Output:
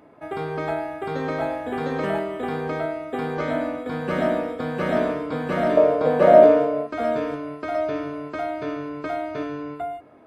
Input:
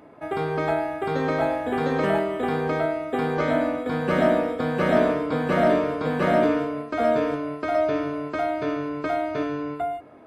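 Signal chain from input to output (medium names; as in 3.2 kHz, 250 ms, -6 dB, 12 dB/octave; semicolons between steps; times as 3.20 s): 5.77–6.87 s: peaking EQ 590 Hz +14.5 dB 0.95 oct; trim -2.5 dB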